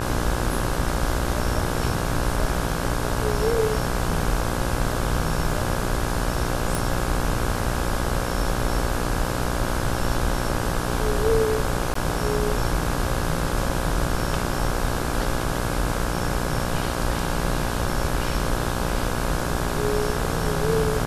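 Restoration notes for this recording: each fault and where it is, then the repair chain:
mains buzz 60 Hz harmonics 28 −28 dBFS
0:06.75: click
0:11.94–0:11.95: drop-out 14 ms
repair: click removal
hum removal 60 Hz, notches 28
repair the gap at 0:11.94, 14 ms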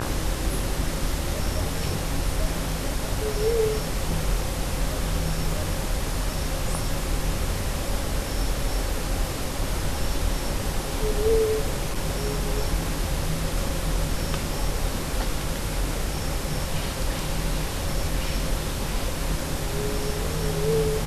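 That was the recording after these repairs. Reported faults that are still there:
none of them is left

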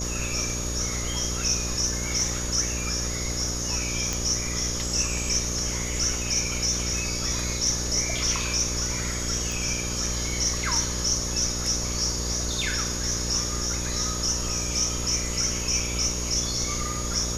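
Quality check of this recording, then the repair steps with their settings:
mains buzz 60 Hz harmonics 10 −32 dBFS
whistle 6,700 Hz −33 dBFS
0:04.13: click
0:09.52: click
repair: click removal
notch filter 6,700 Hz, Q 30
hum removal 60 Hz, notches 10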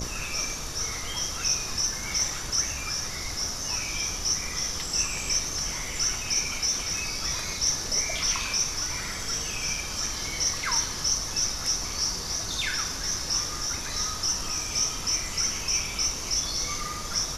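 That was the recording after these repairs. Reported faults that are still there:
none of them is left

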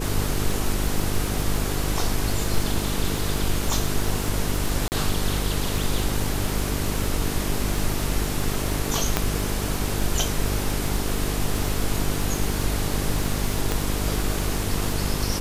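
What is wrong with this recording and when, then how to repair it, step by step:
mains buzz 50 Hz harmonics 9 −28 dBFS
surface crackle 38 per second −26 dBFS
0:04.88–0:04.92: drop-out 39 ms
0:09.17: click −4 dBFS
0:13.72: click −9 dBFS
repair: click removal
hum removal 50 Hz, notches 9
repair the gap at 0:04.88, 39 ms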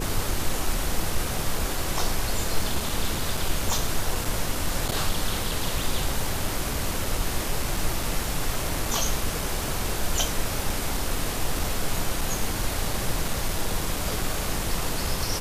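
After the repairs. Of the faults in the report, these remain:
0:09.17: click

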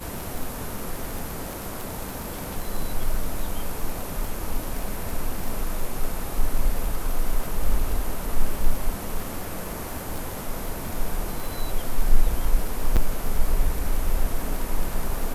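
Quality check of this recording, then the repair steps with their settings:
surface crackle 29 per second −27 dBFS
0:12.96–0:12.97: drop-out 7 ms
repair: click removal
repair the gap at 0:12.96, 7 ms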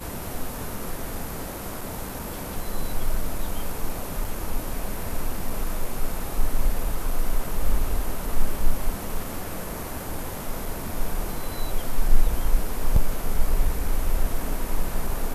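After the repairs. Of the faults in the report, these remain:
none of them is left

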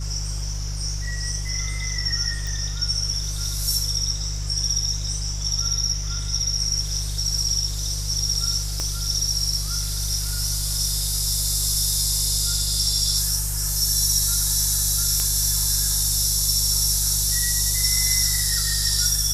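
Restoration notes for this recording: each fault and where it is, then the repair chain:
mains hum 50 Hz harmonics 3 −28 dBFS
0:02.47: click
0:08.80: click −13 dBFS
0:15.20: click −10 dBFS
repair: click removal
hum removal 50 Hz, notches 3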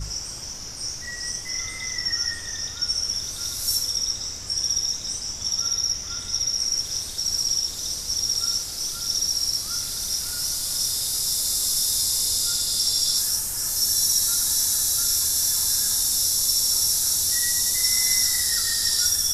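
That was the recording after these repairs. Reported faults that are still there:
0:08.80: click

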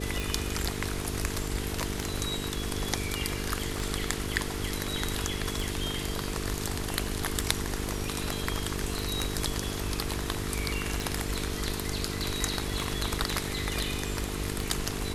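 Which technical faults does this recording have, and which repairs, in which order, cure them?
mains buzz 50 Hz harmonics 9 −36 dBFS
scratch tick 33 1/3 rpm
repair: click removal
hum removal 50 Hz, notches 9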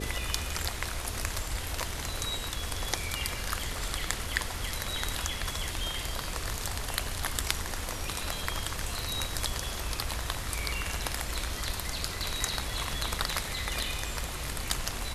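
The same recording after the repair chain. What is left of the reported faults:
none of them is left

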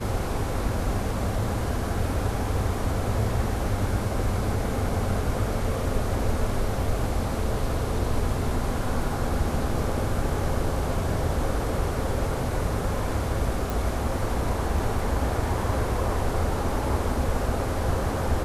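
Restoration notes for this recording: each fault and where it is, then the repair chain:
0:13.70: click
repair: click removal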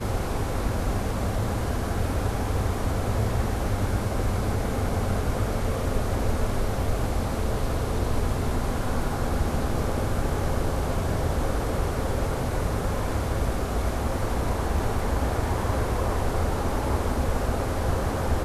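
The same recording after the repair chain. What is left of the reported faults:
none of them is left

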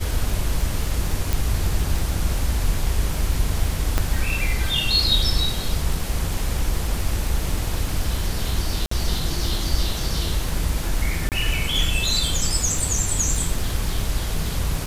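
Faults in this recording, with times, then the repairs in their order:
surface crackle 52 per second −25 dBFS
0:01.33: click
0:03.98: click −6 dBFS
0:08.86–0:08.91: drop-out 54 ms
0:11.29–0:11.32: drop-out 28 ms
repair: click removal
repair the gap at 0:08.86, 54 ms
repair the gap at 0:11.29, 28 ms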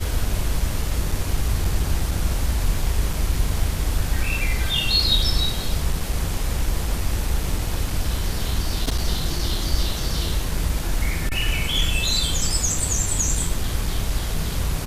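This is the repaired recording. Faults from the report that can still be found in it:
0:01.33: click

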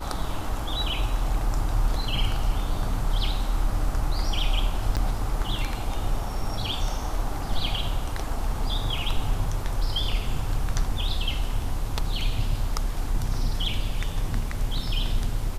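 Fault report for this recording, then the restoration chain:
0:04.96–0:04.97: drop-out 7.8 ms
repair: repair the gap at 0:04.96, 7.8 ms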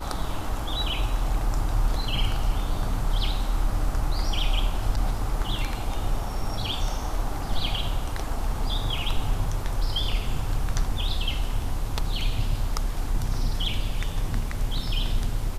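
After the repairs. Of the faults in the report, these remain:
none of them is left

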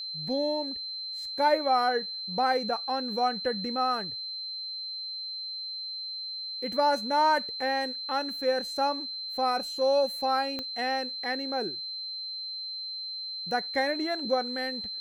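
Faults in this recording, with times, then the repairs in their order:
whistle 4,100 Hz −34 dBFS
0:10.59: click −20 dBFS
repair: click removal
notch filter 4,100 Hz, Q 30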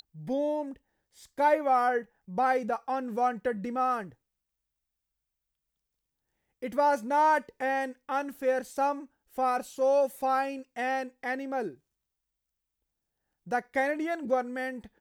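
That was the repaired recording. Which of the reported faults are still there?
0:10.59: click

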